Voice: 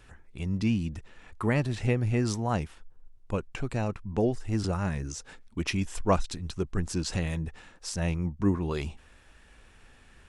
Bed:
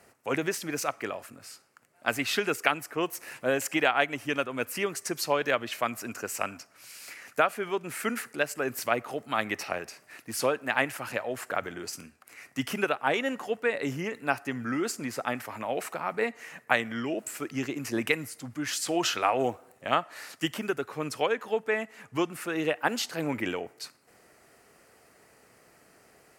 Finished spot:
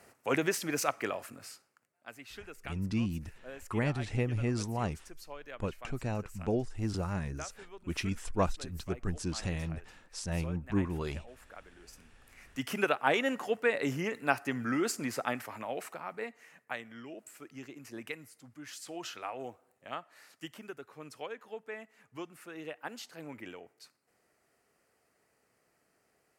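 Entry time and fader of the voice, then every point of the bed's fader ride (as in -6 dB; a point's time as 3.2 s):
2.30 s, -5.0 dB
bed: 1.44 s -0.5 dB
2.07 s -20 dB
11.71 s -20 dB
12.88 s -1 dB
15.11 s -1 dB
16.66 s -14.5 dB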